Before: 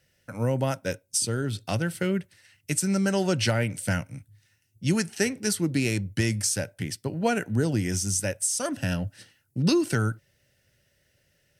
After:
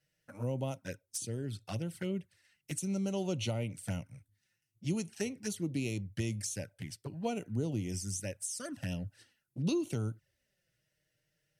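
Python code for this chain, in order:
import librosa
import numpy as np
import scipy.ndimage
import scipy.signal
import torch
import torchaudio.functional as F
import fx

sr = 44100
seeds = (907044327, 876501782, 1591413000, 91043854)

y = fx.env_flanger(x, sr, rest_ms=6.6, full_db=-22.5)
y = y * 10.0 ** (-9.0 / 20.0)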